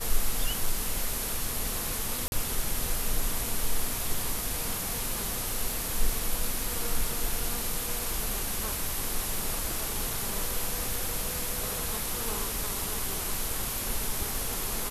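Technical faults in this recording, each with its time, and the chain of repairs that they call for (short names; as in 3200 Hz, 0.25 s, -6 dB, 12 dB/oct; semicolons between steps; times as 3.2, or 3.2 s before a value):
2.28–2.32 gap 41 ms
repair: interpolate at 2.28, 41 ms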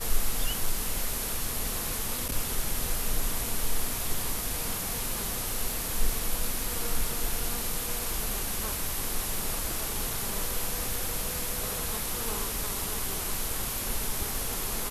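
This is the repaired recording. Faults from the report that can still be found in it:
none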